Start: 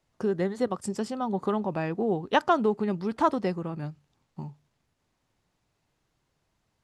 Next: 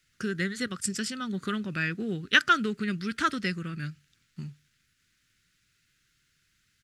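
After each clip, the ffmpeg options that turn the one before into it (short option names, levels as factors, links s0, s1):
-af "firequalizer=gain_entry='entry(170,0);entry(860,-25);entry(1400,10)':delay=0.05:min_phase=1"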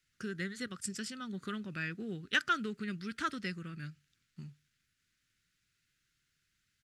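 -af "asoftclip=type=tanh:threshold=0.447,volume=0.376"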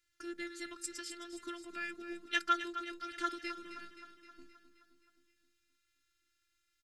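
-filter_complex "[0:a]afftfilt=real='hypot(re,im)*cos(PI*b)':imag='0':win_size=512:overlap=0.75,asplit=2[s0][s1];[s1]aecho=0:1:262|524|786|1048|1310|1572|1834:0.282|0.166|0.0981|0.0579|0.0342|0.0201|0.0119[s2];[s0][s2]amix=inputs=2:normalize=0,volume=1.19"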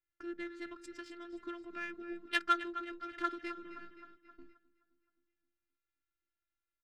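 -af "agate=range=0.316:threshold=0.00126:ratio=16:detection=peak,adynamicsmooth=sensitivity=2.5:basefreq=2000,volume=1.19"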